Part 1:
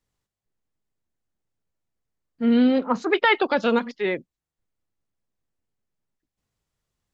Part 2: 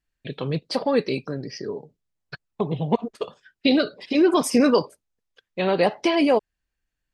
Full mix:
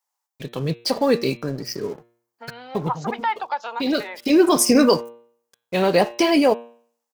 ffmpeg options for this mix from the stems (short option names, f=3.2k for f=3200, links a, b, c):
-filter_complex "[0:a]acompressor=threshold=-26dB:ratio=6,highpass=f=860:t=q:w=4.9,volume=-4.5dB,asplit=2[a][b];[1:a]lowshelf=f=75:g=6,aeval=exprs='sgn(val(0))*max(abs(val(0))-0.00473,0)':c=same,bandreject=f=117.7:t=h:w=4,bandreject=f=235.4:t=h:w=4,bandreject=f=353.1:t=h:w=4,bandreject=f=470.8:t=h:w=4,bandreject=f=588.5:t=h:w=4,bandreject=f=706.2:t=h:w=4,bandreject=f=823.9:t=h:w=4,bandreject=f=941.6:t=h:w=4,bandreject=f=1.0593k:t=h:w=4,bandreject=f=1.177k:t=h:w=4,bandreject=f=1.2947k:t=h:w=4,bandreject=f=1.4124k:t=h:w=4,bandreject=f=1.5301k:t=h:w=4,bandreject=f=1.6478k:t=h:w=4,bandreject=f=1.7655k:t=h:w=4,bandreject=f=1.8832k:t=h:w=4,bandreject=f=2.0009k:t=h:w=4,bandreject=f=2.1186k:t=h:w=4,bandreject=f=2.2363k:t=h:w=4,bandreject=f=2.354k:t=h:w=4,bandreject=f=2.4717k:t=h:w=4,bandreject=f=2.5894k:t=h:w=4,bandreject=f=2.7071k:t=h:w=4,bandreject=f=2.8248k:t=h:w=4,bandreject=f=2.9425k:t=h:w=4,bandreject=f=3.0602k:t=h:w=4,bandreject=f=3.1779k:t=h:w=4,bandreject=f=3.2956k:t=h:w=4,bandreject=f=3.4133k:t=h:w=4,bandreject=f=3.531k:t=h:w=4,bandreject=f=3.6487k:t=h:w=4,bandreject=f=3.7664k:t=h:w=4,bandreject=f=3.8841k:t=h:w=4,bandreject=f=4.0018k:t=h:w=4,bandreject=f=4.1195k:t=h:w=4,adelay=150,volume=0.5dB[c];[b]apad=whole_len=321201[d];[c][d]sidechaincompress=threshold=-39dB:ratio=8:attack=32:release=302[e];[a][e]amix=inputs=2:normalize=0,dynaudnorm=f=150:g=11:m=3dB,aexciter=amount=3.4:drive=2:freq=5k"